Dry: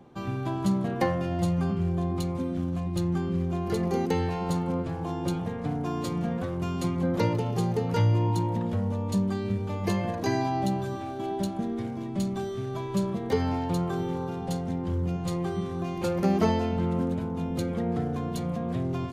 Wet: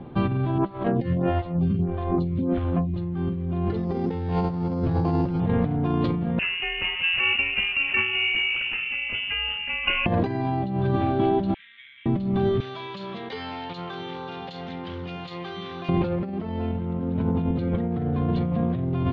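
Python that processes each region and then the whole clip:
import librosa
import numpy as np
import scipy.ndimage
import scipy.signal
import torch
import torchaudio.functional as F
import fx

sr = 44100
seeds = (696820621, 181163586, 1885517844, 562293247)

y = fx.chain(x, sr, fx.over_compress(threshold_db=-29.0, ratio=-0.5),
    fx.stagger_phaser(hz=1.6), at=(0.58, 2.94))
y = fx.chain(y, sr, fx.lowpass(hz=2600.0, slope=12),
    fx.resample_bad(factor=8, down='none', up='hold'), at=(3.76, 5.4))
y = fx.chain(y, sr, fx.highpass(hz=370.0, slope=24),
    fx.freq_invert(carrier_hz=3200), at=(6.39, 10.06))
y = fx.chain(y, sr, fx.ellip_highpass(hz=2000.0, order=4, stop_db=60),
    fx.resample_bad(factor=8, down='filtered', up='hold'),
    fx.env_flatten(amount_pct=50), at=(11.54, 12.06))
y = fx.chain(y, sr, fx.differentiator(),
    fx.env_flatten(amount_pct=70), at=(12.6, 15.89))
y = scipy.signal.sosfilt(scipy.signal.butter(6, 3800.0, 'lowpass', fs=sr, output='sos'), y)
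y = fx.low_shelf(y, sr, hz=260.0, db=8.0)
y = fx.over_compress(y, sr, threshold_db=-29.0, ratio=-1.0)
y = y * librosa.db_to_amplitude(5.0)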